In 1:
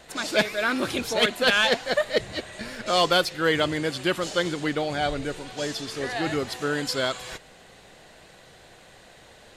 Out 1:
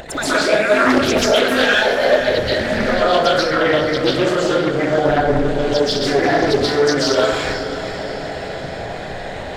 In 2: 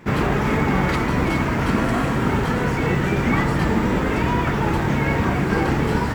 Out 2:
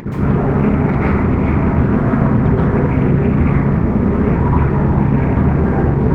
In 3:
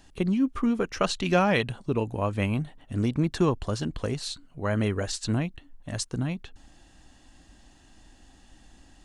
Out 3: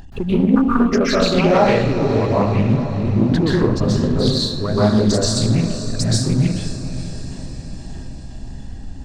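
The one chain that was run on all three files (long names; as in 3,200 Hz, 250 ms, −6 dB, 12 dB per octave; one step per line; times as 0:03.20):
spectral envelope exaggerated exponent 2
in parallel at −1 dB: upward compression, threshold −25 dBFS
on the sum: leveller curve on the samples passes 1
downward compressor 10 to 1, threshold −17 dBFS
on a send: feedback delay with all-pass diffusion 499 ms, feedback 57%, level −11 dB
on the sum: dense smooth reverb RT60 0.82 s, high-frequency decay 0.6×, pre-delay 115 ms, DRR −8 dB
highs frequency-modulated by the lows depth 0.34 ms
level −2.5 dB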